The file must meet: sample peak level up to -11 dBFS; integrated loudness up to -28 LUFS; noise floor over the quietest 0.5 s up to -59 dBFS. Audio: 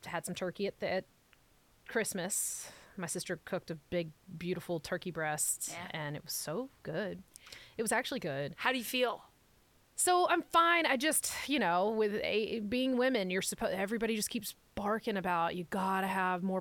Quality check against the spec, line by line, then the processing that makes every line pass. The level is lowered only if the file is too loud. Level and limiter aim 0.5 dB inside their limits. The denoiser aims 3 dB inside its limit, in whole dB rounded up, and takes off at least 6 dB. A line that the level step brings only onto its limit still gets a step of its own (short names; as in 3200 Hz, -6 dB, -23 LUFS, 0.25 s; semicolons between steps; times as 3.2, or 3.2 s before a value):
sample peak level -15.5 dBFS: OK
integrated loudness -34.0 LUFS: OK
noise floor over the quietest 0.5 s -67 dBFS: OK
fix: none